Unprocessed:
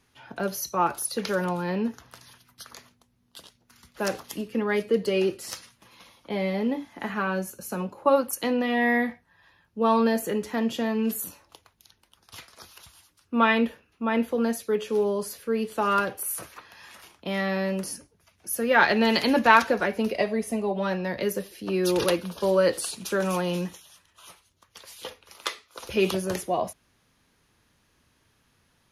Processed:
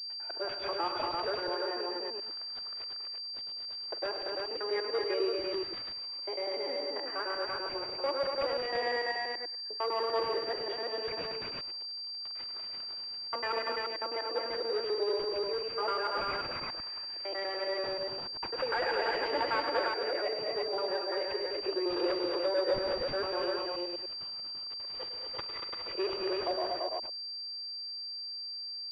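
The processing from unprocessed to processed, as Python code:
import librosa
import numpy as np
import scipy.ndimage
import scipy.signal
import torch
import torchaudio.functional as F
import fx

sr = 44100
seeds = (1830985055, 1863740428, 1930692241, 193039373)

p1 = fx.local_reverse(x, sr, ms=98.0)
p2 = np.clip(p1, -10.0 ** (-19.5 / 20.0), 10.0 ** (-19.5 / 20.0))
p3 = p2 + fx.echo_multitap(p2, sr, ms=(46, 104, 200, 235, 340), db=(-17.5, -11.0, -11.5, -5.5, -3.5), dry=0)
p4 = fx.vibrato(p3, sr, rate_hz=2.5, depth_cents=8.8)
p5 = 10.0 ** (-28.5 / 20.0) * (np.abs((p4 / 10.0 ** (-28.5 / 20.0) + 3.0) % 4.0 - 2.0) - 1.0)
p6 = p4 + (p5 * librosa.db_to_amplitude(-11.0))
p7 = scipy.signal.sosfilt(scipy.signal.cheby1(5, 1.0, 330.0, 'highpass', fs=sr, output='sos'), p6)
p8 = fx.pwm(p7, sr, carrier_hz=4700.0)
y = p8 * librosa.db_to_amplitude(-7.0)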